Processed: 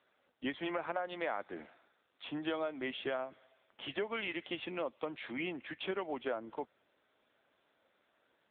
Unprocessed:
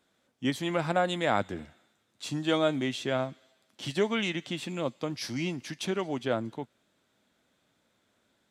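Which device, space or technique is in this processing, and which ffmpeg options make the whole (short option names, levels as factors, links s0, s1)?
voicemail: -af "highpass=410,lowpass=2800,acompressor=threshold=0.02:ratio=10,volume=1.26" -ar 8000 -c:a libopencore_amrnb -b:a 7950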